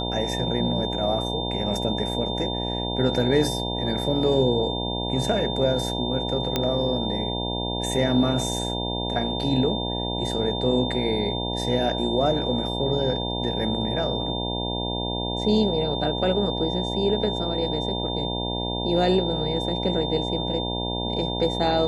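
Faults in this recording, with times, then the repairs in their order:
buzz 60 Hz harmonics 16 -29 dBFS
tone 3600 Hz -30 dBFS
6.56 pop -8 dBFS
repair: de-click; notch 3600 Hz, Q 30; de-hum 60 Hz, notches 16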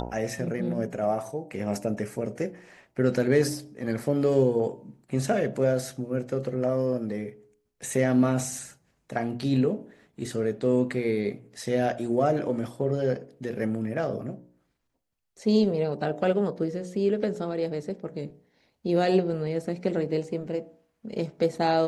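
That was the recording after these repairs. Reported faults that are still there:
none

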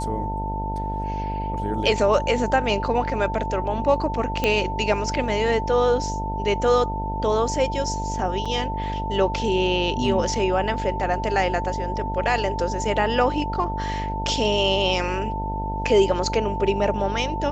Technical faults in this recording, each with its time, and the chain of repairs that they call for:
buzz 50 Hz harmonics 19 -29 dBFS
tone 890 Hz -28 dBFS
4.44 pop -8 dBFS
8.45–8.46 gap 5.9 ms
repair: de-click; de-hum 50 Hz, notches 19; notch 890 Hz, Q 30; interpolate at 8.45, 5.9 ms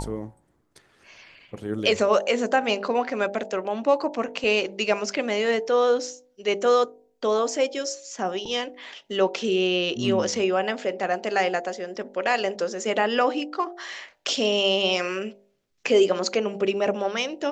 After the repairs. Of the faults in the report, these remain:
none

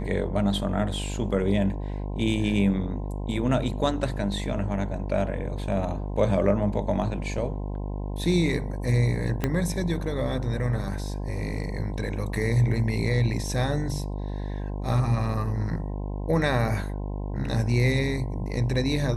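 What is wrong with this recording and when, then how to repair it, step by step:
buzz 50 Hz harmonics 21 -31 dBFS
9.44 pop -11 dBFS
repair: de-click; de-hum 50 Hz, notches 21

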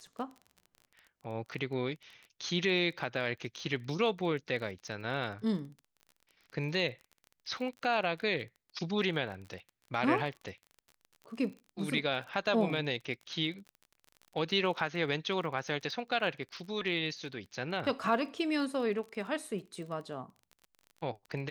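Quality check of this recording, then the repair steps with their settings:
crackle 28/s -42 dBFS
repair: de-click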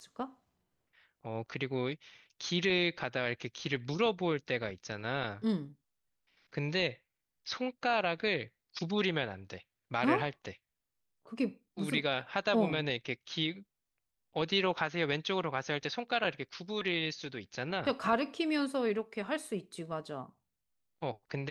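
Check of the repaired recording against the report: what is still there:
none

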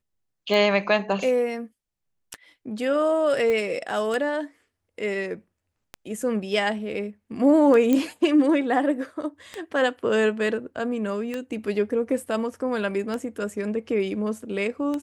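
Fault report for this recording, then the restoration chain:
tick 33 1/3 rpm -16 dBFS
3.5 pop -15 dBFS
7.93 pop -10 dBFS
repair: de-click

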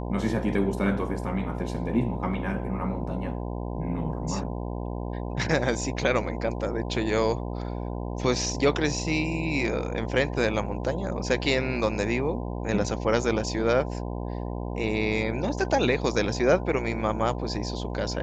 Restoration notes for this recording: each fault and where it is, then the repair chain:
buzz 60 Hz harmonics 17 -32 dBFS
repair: de-hum 60 Hz, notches 17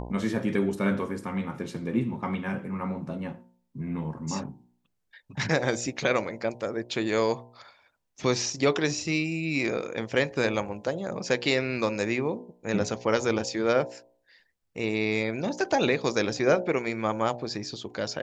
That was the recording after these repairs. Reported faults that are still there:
none

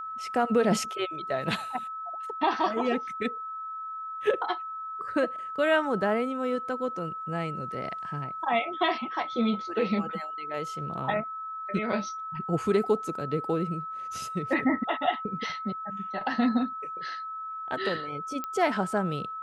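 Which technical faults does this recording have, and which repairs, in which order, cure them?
tone 1300 Hz -34 dBFS
18.44 pop -19 dBFS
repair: de-click; notch 1300 Hz, Q 30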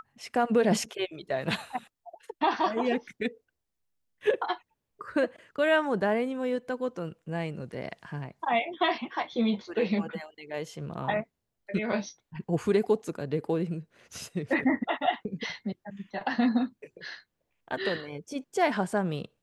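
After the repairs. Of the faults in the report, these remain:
none

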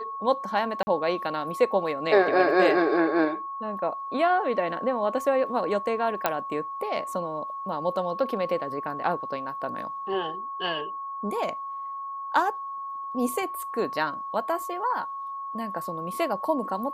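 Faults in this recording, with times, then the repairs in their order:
tone 1100 Hz -32 dBFS
0.83–0.87 gap 40 ms
6.26 pop -8 dBFS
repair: de-click; notch 1100 Hz, Q 30; interpolate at 0.83, 40 ms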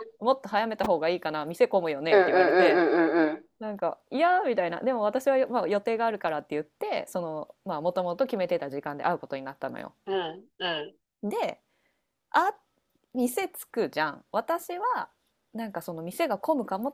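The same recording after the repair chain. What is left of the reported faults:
none

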